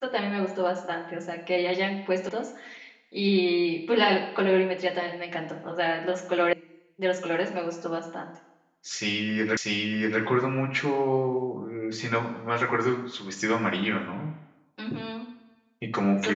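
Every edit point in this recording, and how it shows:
2.29 sound cut off
6.53 sound cut off
9.57 repeat of the last 0.64 s

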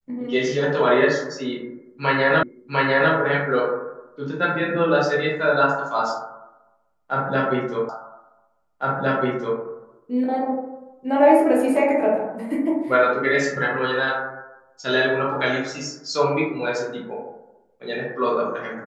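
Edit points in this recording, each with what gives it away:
2.43 repeat of the last 0.7 s
7.89 repeat of the last 1.71 s

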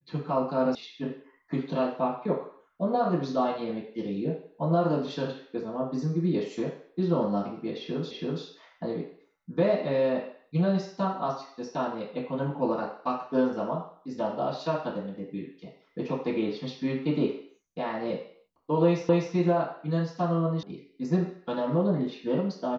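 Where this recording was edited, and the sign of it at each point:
0.75 sound cut off
8.11 repeat of the last 0.33 s
19.09 repeat of the last 0.25 s
20.63 sound cut off

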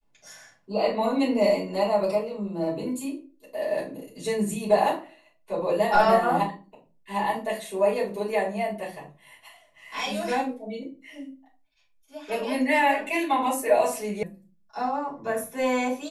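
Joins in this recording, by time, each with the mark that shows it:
14.23 sound cut off

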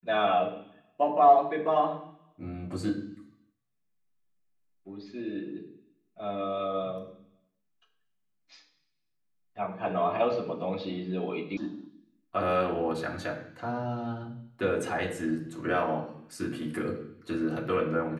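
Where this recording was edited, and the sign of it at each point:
11.57 sound cut off

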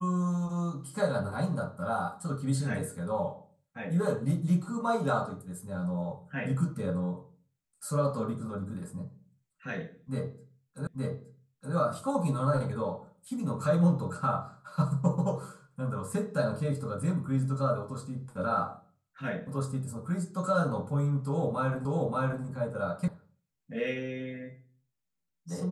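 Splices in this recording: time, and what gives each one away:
10.87 repeat of the last 0.87 s
21.85 repeat of the last 0.58 s
23.08 sound cut off

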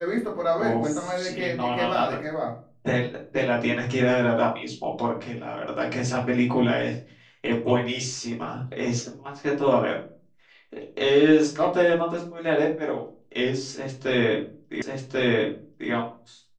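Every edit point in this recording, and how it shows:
14.82 repeat of the last 1.09 s

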